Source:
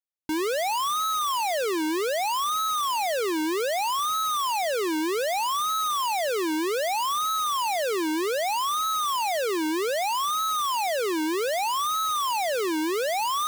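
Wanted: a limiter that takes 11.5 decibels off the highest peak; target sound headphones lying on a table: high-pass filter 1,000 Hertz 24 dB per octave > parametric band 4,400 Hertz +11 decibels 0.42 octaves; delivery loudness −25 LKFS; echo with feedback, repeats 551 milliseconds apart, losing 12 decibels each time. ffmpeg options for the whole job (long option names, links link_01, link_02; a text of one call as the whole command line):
ffmpeg -i in.wav -af "alimiter=level_in=13.5dB:limit=-24dB:level=0:latency=1,volume=-13.5dB,highpass=frequency=1000:width=0.5412,highpass=frequency=1000:width=1.3066,equalizer=frequency=4400:width_type=o:width=0.42:gain=11,aecho=1:1:551|1102|1653:0.251|0.0628|0.0157,volume=12.5dB" out.wav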